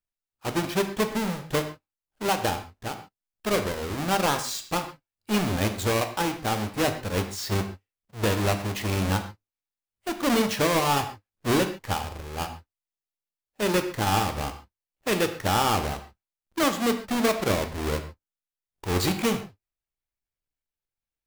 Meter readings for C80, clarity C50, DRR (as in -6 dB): 13.0 dB, 10.0 dB, 7.0 dB